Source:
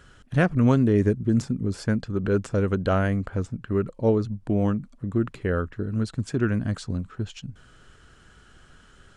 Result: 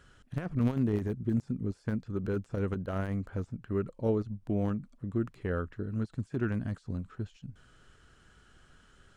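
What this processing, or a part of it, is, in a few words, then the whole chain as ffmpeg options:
de-esser from a sidechain: -filter_complex "[0:a]asplit=2[a][b];[b]highpass=f=4.3k:w=0.5412,highpass=f=4.3k:w=1.3066,apad=whole_len=404281[c];[a][c]sidechaincompress=threshold=-56dB:ratio=12:attack=0.65:release=21,volume=-7dB"

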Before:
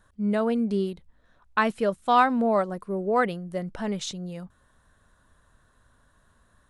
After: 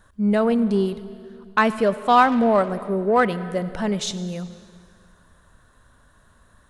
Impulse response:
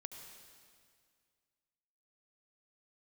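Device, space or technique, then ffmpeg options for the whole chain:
saturated reverb return: -filter_complex "[0:a]asplit=2[a][b];[1:a]atrim=start_sample=2205[c];[b][c]afir=irnorm=-1:irlink=0,asoftclip=type=tanh:threshold=-28dB,volume=-1dB[d];[a][d]amix=inputs=2:normalize=0,volume=3dB"

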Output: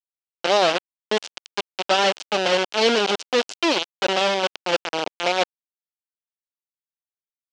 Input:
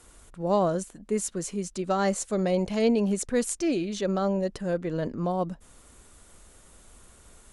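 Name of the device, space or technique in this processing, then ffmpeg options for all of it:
hand-held game console: -filter_complex "[0:a]acrusher=bits=3:mix=0:aa=0.000001,highpass=430,equalizer=f=1.1k:t=q:w=4:g=-6,equalizer=f=1.9k:t=q:w=4:g=-5,equalizer=f=3k:t=q:w=4:g=5,lowpass=f=5.6k:w=0.5412,lowpass=f=5.6k:w=1.3066,asettb=1/sr,asplit=3[a][b][c];[a]atrim=end=3.534[d];[b]atrim=start=3.53:end=4.92,asetpts=PTS-STARTPTS,afade=t=in:d=0.004:c=qsin,afade=t=out:st=1.386:d=0.004:c=qsin,deesser=0.6[e];[c]atrim=start=4.916[f];[d][e]acrossfade=d=0.004:c1=hsin:c2=qsin[g];[g][f]acrossfade=d=0.004:c1=qsin:c2=hsin,volume=7dB"

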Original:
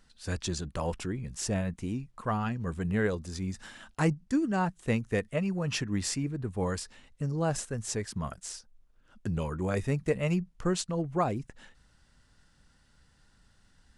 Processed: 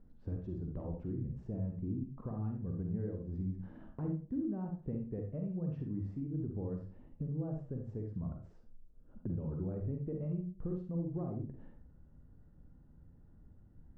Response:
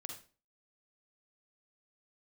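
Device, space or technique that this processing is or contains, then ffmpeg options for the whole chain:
television next door: -filter_complex "[0:a]acompressor=threshold=-43dB:ratio=4,lowpass=410[a];[1:a]atrim=start_sample=2205[b];[a][b]afir=irnorm=-1:irlink=0,volume=10dB"

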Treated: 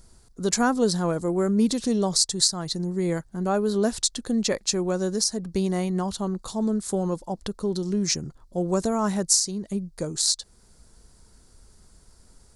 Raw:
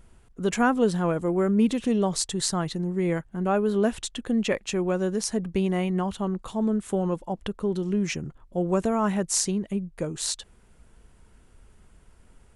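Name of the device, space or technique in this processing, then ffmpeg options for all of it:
over-bright horn tweeter: -af "highshelf=f=3.6k:t=q:w=3:g=8,alimiter=limit=-7dB:level=0:latency=1:release=327"

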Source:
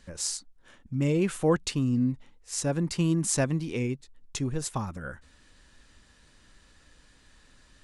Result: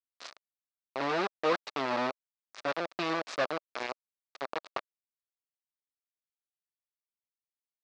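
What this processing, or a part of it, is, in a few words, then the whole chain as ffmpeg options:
hand-held game console: -af "acrusher=bits=3:mix=0:aa=0.000001,highpass=420,equalizer=f=610:t=q:w=4:g=4,equalizer=f=1.2k:t=q:w=4:g=5,equalizer=f=3.1k:t=q:w=4:g=-5,lowpass=f=4.4k:w=0.5412,lowpass=f=4.4k:w=1.3066,volume=-4dB"

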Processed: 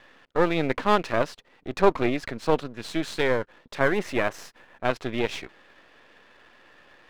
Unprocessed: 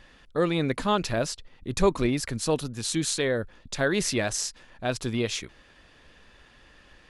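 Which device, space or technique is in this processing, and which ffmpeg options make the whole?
crystal radio: -filter_complex "[0:a]highpass=310,lowpass=2.5k,aeval=exprs='if(lt(val(0),0),0.251*val(0),val(0))':c=same,asettb=1/sr,asplit=3[a][b][c];[a]atrim=end=3.794[d];[b]atrim=start=3.79:end=4.84,asetpts=PTS-STARTPTS,afade=t=in:d=0.004:c=qsin,afade=t=out:st=1.046:d=0.004:c=qsin,equalizer=f=4.5k:w=1.1:g=-5.5[e];[c]atrim=start=4.836[f];[d][e]acrossfade=d=0.004:c1=hsin:c2=qsin[g];[g][f]acrossfade=d=0.004:c1=qsin:c2=hsin,volume=7dB"

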